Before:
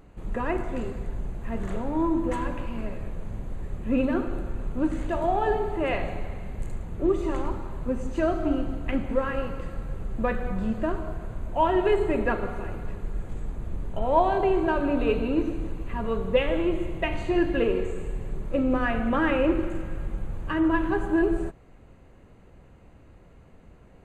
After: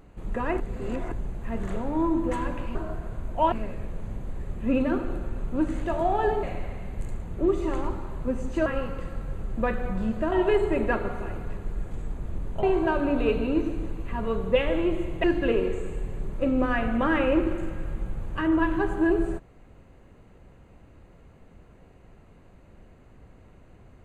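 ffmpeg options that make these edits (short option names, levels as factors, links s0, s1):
-filter_complex "[0:a]asplit=10[s0][s1][s2][s3][s4][s5][s6][s7][s8][s9];[s0]atrim=end=0.602[s10];[s1]atrim=start=0.598:end=1.122,asetpts=PTS-STARTPTS,areverse[s11];[s2]atrim=start=1.118:end=2.752[s12];[s3]atrim=start=10.928:end=11.702[s13];[s4]atrim=start=2.748:end=5.662[s14];[s5]atrim=start=6.038:end=8.272[s15];[s6]atrim=start=9.268:end=10.932[s16];[s7]atrim=start=11.698:end=14.012[s17];[s8]atrim=start=14.438:end=17.052[s18];[s9]atrim=start=17.358[s19];[s10][s11]acrossfade=d=0.004:c1=hsin:c2=hsin[s20];[s20][s12]acrossfade=d=0.004:c1=hsin:c2=hsin[s21];[s21][s13]acrossfade=d=0.004:c1=hsin:c2=hsin[s22];[s22][s14]acrossfade=d=0.004:c1=hsin:c2=hsin[s23];[s23][s15]acrossfade=d=0.004:c1=hsin:c2=hsin[s24];[s24][s16]acrossfade=d=0.004:c1=hsin:c2=hsin[s25];[s25][s17]acrossfade=d=0.004:c1=hsin:c2=hsin[s26];[s26][s18]acrossfade=d=0.004:c1=hsin:c2=hsin[s27];[s27][s19]acrossfade=d=0.004:c1=hsin:c2=hsin"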